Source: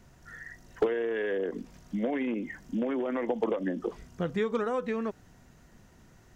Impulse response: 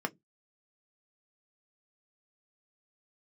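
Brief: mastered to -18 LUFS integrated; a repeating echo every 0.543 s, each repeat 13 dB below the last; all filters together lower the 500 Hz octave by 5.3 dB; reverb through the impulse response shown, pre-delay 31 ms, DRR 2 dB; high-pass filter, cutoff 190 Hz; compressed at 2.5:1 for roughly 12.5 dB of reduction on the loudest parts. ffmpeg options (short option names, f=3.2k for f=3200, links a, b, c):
-filter_complex "[0:a]highpass=190,equalizer=f=500:t=o:g=-6,acompressor=threshold=-45dB:ratio=2.5,aecho=1:1:543|1086|1629:0.224|0.0493|0.0108,asplit=2[a][b];[1:a]atrim=start_sample=2205,adelay=31[c];[b][c]afir=irnorm=-1:irlink=0,volume=-7dB[d];[a][d]amix=inputs=2:normalize=0,volume=24dB"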